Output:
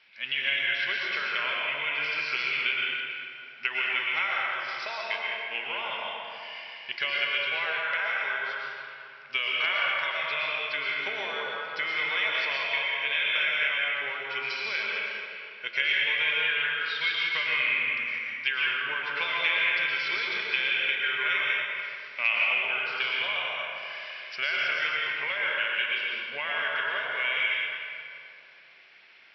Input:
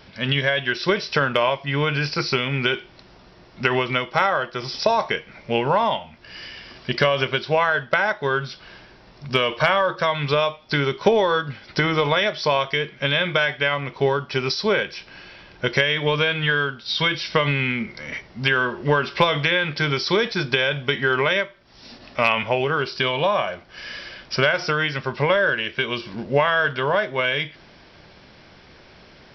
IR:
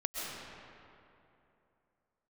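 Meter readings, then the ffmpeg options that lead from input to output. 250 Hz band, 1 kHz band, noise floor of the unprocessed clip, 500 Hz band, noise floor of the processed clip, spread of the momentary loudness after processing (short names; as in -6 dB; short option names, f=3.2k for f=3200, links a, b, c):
under -20 dB, -11.0 dB, -49 dBFS, -18.5 dB, -48 dBFS, 10 LU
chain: -filter_complex "[0:a]bandpass=f=2.4k:t=q:w=2.8:csg=0[a];[1:a]atrim=start_sample=2205,asetrate=48510,aresample=44100[b];[a][b]afir=irnorm=-1:irlink=0,volume=-1dB"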